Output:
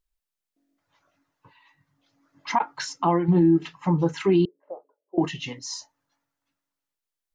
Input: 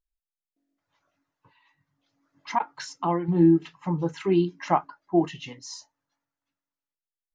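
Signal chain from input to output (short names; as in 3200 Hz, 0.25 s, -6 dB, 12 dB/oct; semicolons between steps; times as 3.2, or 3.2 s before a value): limiter -17 dBFS, peak gain reduction 7.5 dB; 4.45–5.18 Butterworth band-pass 480 Hz, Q 3.8; gain +5.5 dB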